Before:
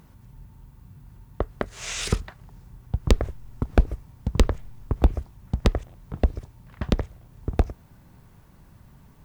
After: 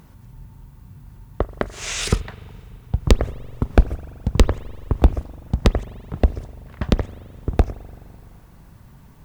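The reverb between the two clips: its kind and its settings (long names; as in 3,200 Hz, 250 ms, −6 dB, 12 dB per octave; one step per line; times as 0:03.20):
spring reverb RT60 2.4 s, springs 42 ms, chirp 50 ms, DRR 16.5 dB
level +4.5 dB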